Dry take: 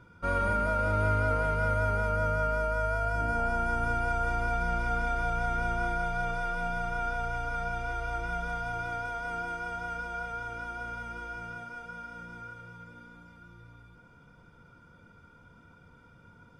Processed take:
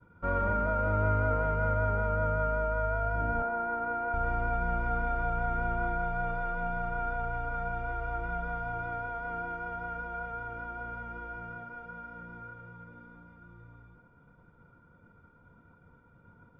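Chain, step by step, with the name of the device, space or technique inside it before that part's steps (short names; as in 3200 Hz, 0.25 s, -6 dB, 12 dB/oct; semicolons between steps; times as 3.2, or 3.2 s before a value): hearing-loss simulation (LPF 1600 Hz 12 dB/oct; expander -53 dBFS); 3.42–4.14 three-band isolator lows -23 dB, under 220 Hz, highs -13 dB, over 2500 Hz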